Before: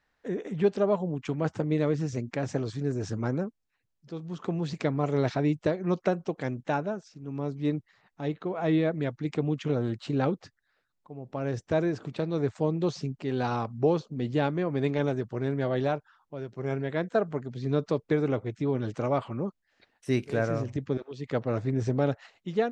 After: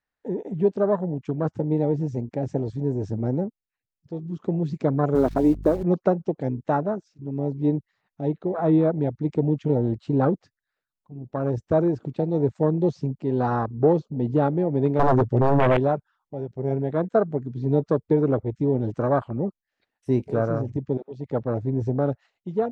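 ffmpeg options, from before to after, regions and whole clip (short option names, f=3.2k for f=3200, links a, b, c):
-filter_complex "[0:a]asettb=1/sr,asplit=3[a][b][c];[a]atrim=end=5.154[d];[b]atrim=start=5.15:end=5.83,asetpts=PTS-STARTPTS,afade=t=in:d=0.004:c=qsin,afade=t=out:st=0.676:d=0.004:c=qsin,lowshelf=f=160:t=q:w=1.5:g=-12,acrusher=bits=7:dc=4:mix=0:aa=0.000001,aeval=exprs='val(0)+0.01*(sin(2*PI*50*n/s)+sin(2*PI*2*50*n/s)/2+sin(2*PI*3*50*n/s)/3+sin(2*PI*4*50*n/s)/4+sin(2*PI*5*50*n/s)/5)':c=same[e];[c]atrim=start=5.826[f];[d][e]acrossfade=d=0.004:c1=hsin:c2=qsin[g];[g][f]acrossfade=d=0.004:c1=qsin:c2=hsin,asettb=1/sr,asplit=3[h][i][j];[h]atrim=end=14.994[k];[i]atrim=start=14.99:end=15.77,asetpts=PTS-STARTPTS,afade=t=in:d=0.004:c=qsin,afade=t=out:st=0.776:d=0.004:c=qsin,aecho=1:1:7.3:0.54,atrim=end_sample=34398,acontrast=67,aeval=exprs='0.133*(abs(mod(val(0)/0.133+3,4)-2)-1)':c=same[l];[j]atrim=start=15.766[m];[k][l]acrossfade=d=0.004:c1=hsin:c2=qsin[n];[n][m]acrossfade=d=0.004:c1=qsin:c2=hsin,acontrast=71,afwtdn=0.0562,dynaudnorm=f=770:g=9:m=3dB,volume=-3dB"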